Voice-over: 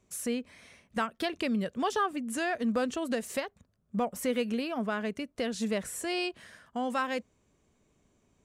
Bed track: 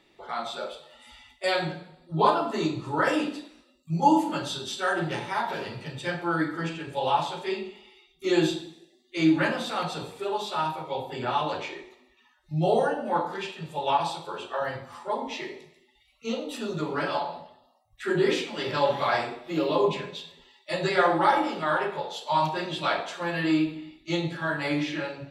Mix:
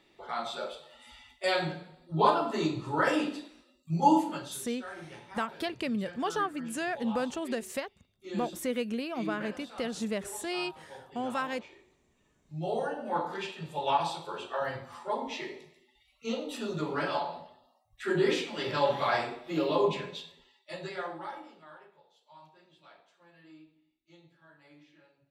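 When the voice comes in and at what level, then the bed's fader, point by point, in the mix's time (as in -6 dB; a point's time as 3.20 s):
4.40 s, -2.0 dB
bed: 4.17 s -2.5 dB
4.75 s -17 dB
12.00 s -17 dB
13.35 s -3 dB
20.18 s -3 dB
22.02 s -30.5 dB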